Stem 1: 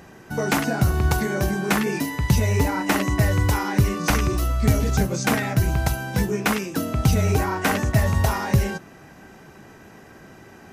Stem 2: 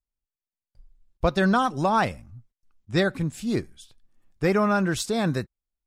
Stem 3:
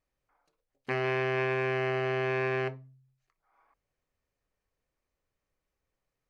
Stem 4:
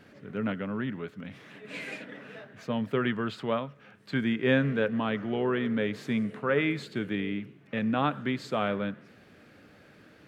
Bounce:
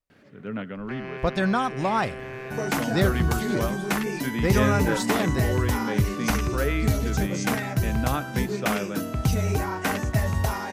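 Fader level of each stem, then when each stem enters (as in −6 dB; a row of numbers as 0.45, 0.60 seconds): −4.5, −2.5, −7.5, −1.5 decibels; 2.20, 0.00, 0.00, 0.10 seconds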